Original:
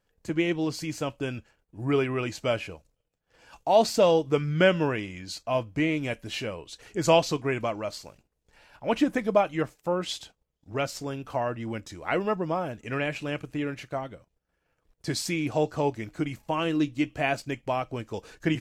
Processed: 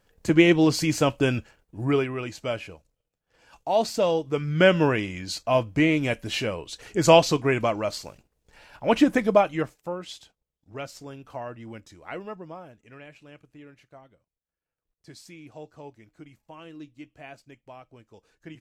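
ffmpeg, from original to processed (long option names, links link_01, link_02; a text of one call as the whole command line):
ffmpeg -i in.wav -af "volume=16.5dB,afade=type=out:start_time=1.37:duration=0.75:silence=0.266073,afade=type=in:start_time=4.33:duration=0.51:silence=0.421697,afade=type=out:start_time=9.2:duration=0.79:silence=0.251189,afade=type=out:start_time=11.75:duration=1.2:silence=0.316228" out.wav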